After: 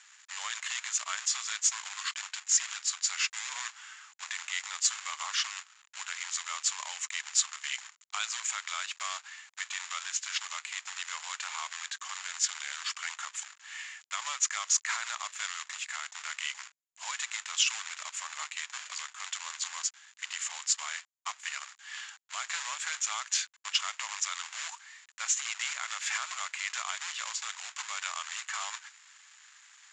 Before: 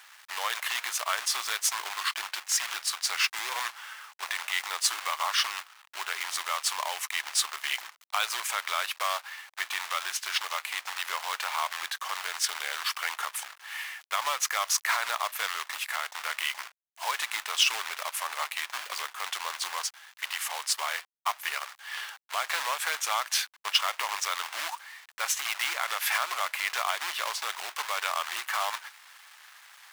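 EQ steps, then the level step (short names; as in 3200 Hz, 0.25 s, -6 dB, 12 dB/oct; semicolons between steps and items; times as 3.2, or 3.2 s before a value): HPF 1300 Hz 12 dB/oct; synth low-pass 7100 Hz, resonance Q 15; air absorption 110 m; -4.0 dB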